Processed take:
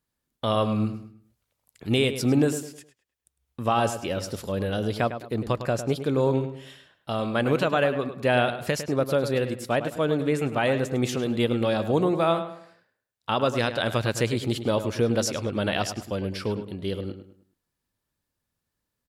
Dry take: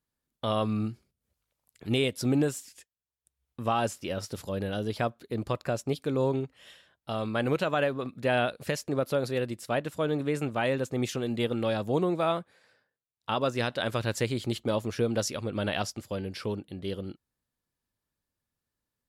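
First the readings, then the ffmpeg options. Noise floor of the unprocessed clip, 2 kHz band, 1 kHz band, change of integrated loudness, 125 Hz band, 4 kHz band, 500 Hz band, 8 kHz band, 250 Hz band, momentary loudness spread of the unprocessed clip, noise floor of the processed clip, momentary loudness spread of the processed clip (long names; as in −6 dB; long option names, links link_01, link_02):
below −85 dBFS, +4.5 dB, +4.5 dB, +4.5 dB, +4.5 dB, +4.0 dB, +4.5 dB, +4.0 dB, +4.5 dB, 9 LU, −83 dBFS, 9 LU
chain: -filter_complex "[0:a]asplit=2[link_01][link_02];[link_02]adelay=104,lowpass=frequency=3300:poles=1,volume=-10dB,asplit=2[link_03][link_04];[link_04]adelay=104,lowpass=frequency=3300:poles=1,volume=0.36,asplit=2[link_05][link_06];[link_06]adelay=104,lowpass=frequency=3300:poles=1,volume=0.36,asplit=2[link_07][link_08];[link_08]adelay=104,lowpass=frequency=3300:poles=1,volume=0.36[link_09];[link_01][link_03][link_05][link_07][link_09]amix=inputs=5:normalize=0,volume=4dB"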